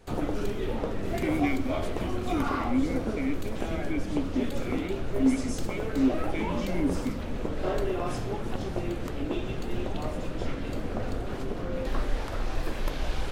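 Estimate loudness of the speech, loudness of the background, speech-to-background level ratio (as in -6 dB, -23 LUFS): -32.0 LUFS, -33.0 LUFS, 1.0 dB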